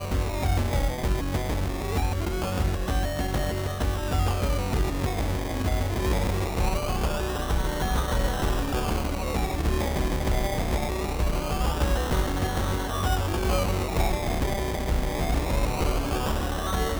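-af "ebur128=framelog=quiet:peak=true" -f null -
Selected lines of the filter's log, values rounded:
Integrated loudness:
  I:         -27.3 LUFS
  Threshold: -37.3 LUFS
Loudness range:
  LRA:         1.0 LU
  Threshold: -47.3 LUFS
  LRA low:   -27.7 LUFS
  LRA high:  -26.7 LUFS
True peak:
  Peak:      -12.7 dBFS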